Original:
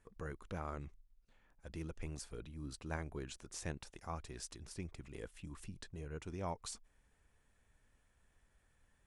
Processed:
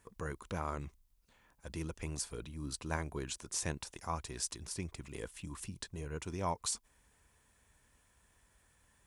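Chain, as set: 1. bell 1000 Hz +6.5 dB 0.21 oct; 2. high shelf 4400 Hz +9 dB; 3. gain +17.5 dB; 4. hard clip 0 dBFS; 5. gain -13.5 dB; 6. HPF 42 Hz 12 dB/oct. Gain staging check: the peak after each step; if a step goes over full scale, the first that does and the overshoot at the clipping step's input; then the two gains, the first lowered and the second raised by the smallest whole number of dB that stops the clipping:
-25.5, -23.0, -5.5, -5.5, -19.0, -19.0 dBFS; no overload

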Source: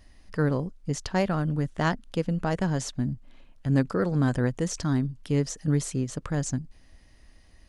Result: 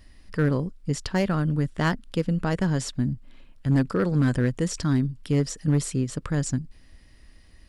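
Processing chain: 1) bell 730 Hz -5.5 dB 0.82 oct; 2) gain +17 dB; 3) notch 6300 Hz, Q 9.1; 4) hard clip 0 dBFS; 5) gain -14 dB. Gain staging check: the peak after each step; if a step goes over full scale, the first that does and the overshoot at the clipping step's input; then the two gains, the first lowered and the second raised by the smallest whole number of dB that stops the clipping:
-10.5, +6.5, +6.5, 0.0, -14.0 dBFS; step 2, 6.5 dB; step 2 +10 dB, step 5 -7 dB

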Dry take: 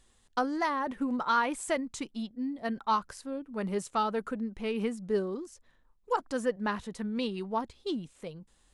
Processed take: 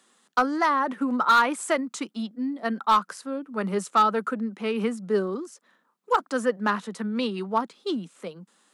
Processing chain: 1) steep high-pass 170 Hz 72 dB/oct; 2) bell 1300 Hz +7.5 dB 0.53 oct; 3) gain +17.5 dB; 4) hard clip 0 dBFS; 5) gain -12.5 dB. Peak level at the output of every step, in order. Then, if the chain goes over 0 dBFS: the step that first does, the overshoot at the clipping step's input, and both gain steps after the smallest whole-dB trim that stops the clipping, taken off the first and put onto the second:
-14.5, -11.0, +6.5, 0.0, -12.5 dBFS; step 3, 6.5 dB; step 3 +10.5 dB, step 5 -5.5 dB

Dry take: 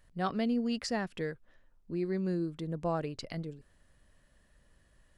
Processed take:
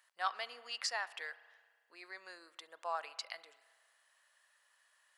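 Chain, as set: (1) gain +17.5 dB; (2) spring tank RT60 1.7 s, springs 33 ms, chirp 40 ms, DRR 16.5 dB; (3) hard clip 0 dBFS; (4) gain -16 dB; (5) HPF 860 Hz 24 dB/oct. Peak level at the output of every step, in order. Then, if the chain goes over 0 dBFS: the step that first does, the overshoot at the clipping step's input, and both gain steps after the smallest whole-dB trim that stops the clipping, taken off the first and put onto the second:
-3.0, -3.0, -3.0, -19.0, -21.0 dBFS; no overload

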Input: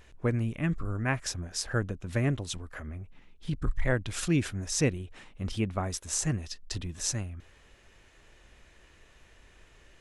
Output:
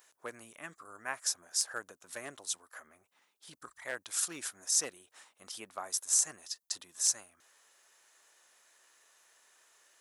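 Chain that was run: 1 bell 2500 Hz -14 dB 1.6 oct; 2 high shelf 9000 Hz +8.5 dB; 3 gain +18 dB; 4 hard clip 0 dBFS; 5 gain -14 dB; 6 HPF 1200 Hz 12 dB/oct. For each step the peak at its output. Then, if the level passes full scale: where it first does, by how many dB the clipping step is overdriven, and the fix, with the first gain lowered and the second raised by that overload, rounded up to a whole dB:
-14.5, -12.0, +6.0, 0.0, -14.0, -12.5 dBFS; step 3, 6.0 dB; step 3 +12 dB, step 5 -8 dB

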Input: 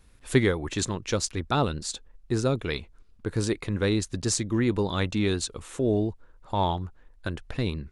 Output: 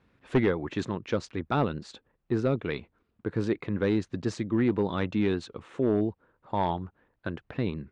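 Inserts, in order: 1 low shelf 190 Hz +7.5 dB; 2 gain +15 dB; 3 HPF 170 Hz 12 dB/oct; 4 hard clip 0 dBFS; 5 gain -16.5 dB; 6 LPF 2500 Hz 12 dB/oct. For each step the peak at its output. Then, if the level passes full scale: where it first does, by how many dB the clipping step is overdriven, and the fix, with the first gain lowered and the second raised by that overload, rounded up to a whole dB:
-4.5, +10.5, +10.0, 0.0, -16.5, -16.0 dBFS; step 2, 10.0 dB; step 2 +5 dB, step 5 -6.5 dB

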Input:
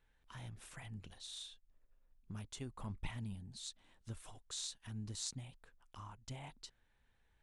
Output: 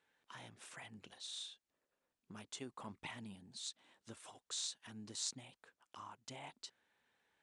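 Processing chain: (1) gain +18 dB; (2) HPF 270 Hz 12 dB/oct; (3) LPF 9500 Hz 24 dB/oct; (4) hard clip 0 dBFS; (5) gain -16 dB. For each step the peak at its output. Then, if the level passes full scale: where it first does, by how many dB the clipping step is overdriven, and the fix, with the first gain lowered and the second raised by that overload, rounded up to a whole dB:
-4.0, -4.0, -5.0, -5.0, -21.0 dBFS; no overload

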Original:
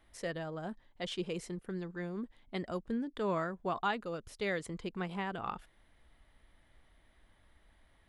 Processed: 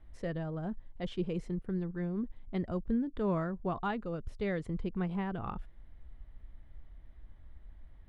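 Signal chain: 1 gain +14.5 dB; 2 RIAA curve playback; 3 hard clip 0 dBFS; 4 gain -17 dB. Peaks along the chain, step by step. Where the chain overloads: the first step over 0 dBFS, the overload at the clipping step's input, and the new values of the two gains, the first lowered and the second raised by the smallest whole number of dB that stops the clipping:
-7.0, -4.5, -4.5, -21.5 dBFS; no overload

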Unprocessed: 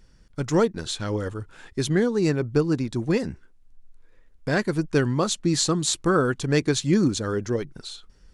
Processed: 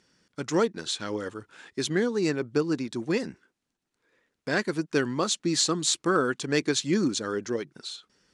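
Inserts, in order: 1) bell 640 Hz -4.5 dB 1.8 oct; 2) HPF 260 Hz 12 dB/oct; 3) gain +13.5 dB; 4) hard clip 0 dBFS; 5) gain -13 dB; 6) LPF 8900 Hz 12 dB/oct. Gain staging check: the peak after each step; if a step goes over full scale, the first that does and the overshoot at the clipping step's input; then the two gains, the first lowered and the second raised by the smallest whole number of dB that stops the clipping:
-8.5, -8.5, +5.0, 0.0, -13.0, -12.0 dBFS; step 3, 5.0 dB; step 3 +8.5 dB, step 5 -8 dB

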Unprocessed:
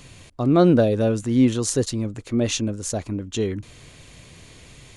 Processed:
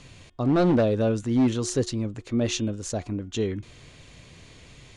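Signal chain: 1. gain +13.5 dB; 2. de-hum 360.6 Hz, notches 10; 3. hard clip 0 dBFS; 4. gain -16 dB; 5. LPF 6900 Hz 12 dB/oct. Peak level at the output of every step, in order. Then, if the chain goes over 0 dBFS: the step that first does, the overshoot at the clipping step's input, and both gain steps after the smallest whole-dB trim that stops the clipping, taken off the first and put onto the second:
+9.0, +9.0, 0.0, -16.0, -16.0 dBFS; step 1, 9.0 dB; step 1 +4.5 dB, step 4 -7 dB

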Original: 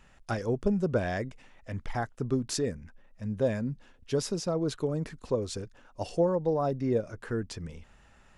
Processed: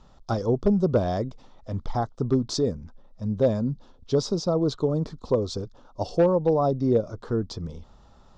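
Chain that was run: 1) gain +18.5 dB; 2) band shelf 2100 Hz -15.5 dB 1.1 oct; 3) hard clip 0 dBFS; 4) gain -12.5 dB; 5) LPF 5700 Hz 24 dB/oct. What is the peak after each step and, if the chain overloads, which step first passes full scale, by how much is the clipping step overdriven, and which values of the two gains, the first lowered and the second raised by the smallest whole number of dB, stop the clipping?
+4.0, +4.0, 0.0, -12.5, -12.5 dBFS; step 1, 4.0 dB; step 1 +14.5 dB, step 4 -8.5 dB

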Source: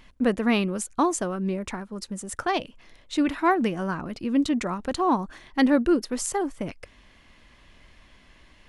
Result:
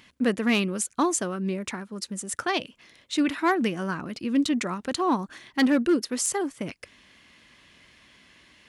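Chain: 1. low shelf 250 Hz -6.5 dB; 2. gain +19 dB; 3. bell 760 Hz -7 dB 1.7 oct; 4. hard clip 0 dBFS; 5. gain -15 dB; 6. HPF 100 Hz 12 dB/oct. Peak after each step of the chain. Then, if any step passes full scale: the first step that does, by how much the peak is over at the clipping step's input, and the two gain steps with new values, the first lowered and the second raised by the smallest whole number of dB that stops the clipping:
-10.0, +9.0, +7.0, 0.0, -15.0, -12.5 dBFS; step 2, 7.0 dB; step 2 +12 dB, step 5 -8 dB

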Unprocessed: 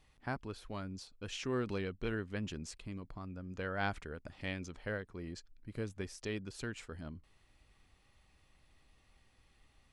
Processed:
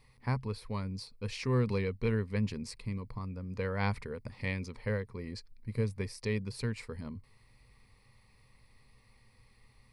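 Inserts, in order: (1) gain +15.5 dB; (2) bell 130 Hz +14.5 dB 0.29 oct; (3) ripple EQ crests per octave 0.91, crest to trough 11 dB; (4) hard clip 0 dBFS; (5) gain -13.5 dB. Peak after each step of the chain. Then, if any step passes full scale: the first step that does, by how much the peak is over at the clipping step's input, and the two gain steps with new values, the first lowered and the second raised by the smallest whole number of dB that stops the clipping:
-5.0, -5.0, -4.5, -4.5, -18.0 dBFS; no overload

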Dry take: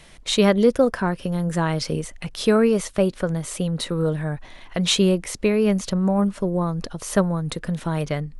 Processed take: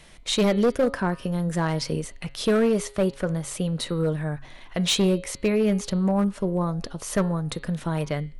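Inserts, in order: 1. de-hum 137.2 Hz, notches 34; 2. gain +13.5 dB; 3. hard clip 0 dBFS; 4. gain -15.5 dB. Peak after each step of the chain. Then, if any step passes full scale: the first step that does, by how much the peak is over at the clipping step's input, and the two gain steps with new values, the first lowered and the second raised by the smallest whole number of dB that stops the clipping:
-5.0, +8.5, 0.0, -15.5 dBFS; step 2, 8.5 dB; step 2 +4.5 dB, step 4 -6.5 dB

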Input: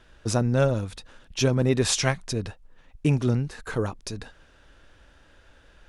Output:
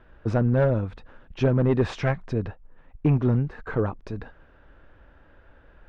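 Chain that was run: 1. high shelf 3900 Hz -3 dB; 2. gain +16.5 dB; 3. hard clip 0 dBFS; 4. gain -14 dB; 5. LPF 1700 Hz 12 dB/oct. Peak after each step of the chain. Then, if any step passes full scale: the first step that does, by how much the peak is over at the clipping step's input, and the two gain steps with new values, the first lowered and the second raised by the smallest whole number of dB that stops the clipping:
-7.0, +9.5, 0.0, -14.0, -13.5 dBFS; step 2, 9.5 dB; step 2 +6.5 dB, step 4 -4 dB

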